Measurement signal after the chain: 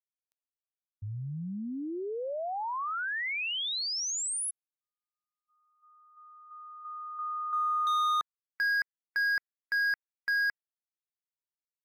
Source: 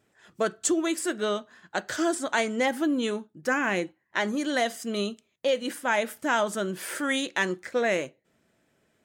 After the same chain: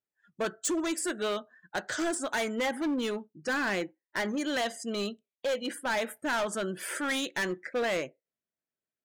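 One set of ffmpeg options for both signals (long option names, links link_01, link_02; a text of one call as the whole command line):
ffmpeg -i in.wav -af "afftdn=noise_reduction=28:noise_floor=-45,lowshelf=frequency=470:gain=-4,volume=26dB,asoftclip=hard,volume=-26dB" out.wav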